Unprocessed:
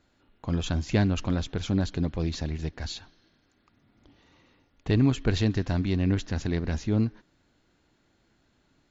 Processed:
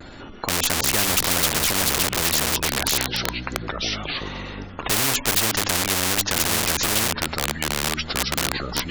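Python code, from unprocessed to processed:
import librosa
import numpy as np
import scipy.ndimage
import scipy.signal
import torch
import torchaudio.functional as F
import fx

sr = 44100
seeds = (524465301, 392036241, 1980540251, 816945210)

p1 = fx.spec_gate(x, sr, threshold_db=-25, keep='strong')
p2 = fx.leveller(p1, sr, passes=1, at=(0.98, 1.5))
p3 = fx.hum_notches(p2, sr, base_hz=50, count=6)
p4 = fx.echo_pitch(p3, sr, ms=192, semitones=-4, count=2, db_per_echo=-6.0)
p5 = (np.mod(10.0 ** (25.5 / 20.0) * p4 + 1.0, 2.0) - 1.0) / 10.0 ** (25.5 / 20.0)
p6 = p4 + F.gain(torch.from_numpy(p5), -7.0).numpy()
p7 = fx.vibrato(p6, sr, rate_hz=0.57, depth_cents=28.0)
p8 = fx.spectral_comp(p7, sr, ratio=4.0)
y = F.gain(torch.from_numpy(p8), 8.0).numpy()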